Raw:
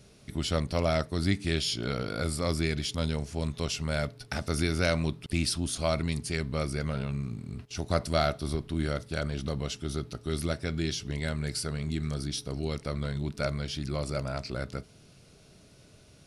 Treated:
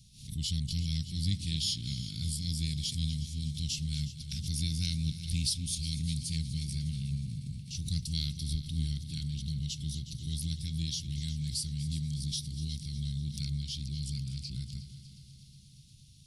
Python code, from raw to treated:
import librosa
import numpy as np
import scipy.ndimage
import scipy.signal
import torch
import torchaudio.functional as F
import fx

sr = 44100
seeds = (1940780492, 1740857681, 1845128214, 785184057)

p1 = scipy.signal.sosfilt(scipy.signal.cheby1(3, 1.0, [180.0, 3400.0], 'bandstop', fs=sr, output='sos'), x)
p2 = fx.peak_eq(p1, sr, hz=190.0, db=-4.0, octaves=0.59)
p3 = p2 + fx.echo_heads(p2, sr, ms=121, heads='second and third', feedback_pct=62, wet_db=-15, dry=0)
y = fx.pre_swell(p3, sr, db_per_s=110.0)